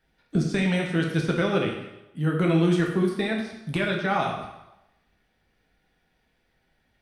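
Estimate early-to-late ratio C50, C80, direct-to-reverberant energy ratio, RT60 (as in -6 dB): 4.5 dB, 7.0 dB, -0.5 dB, 0.90 s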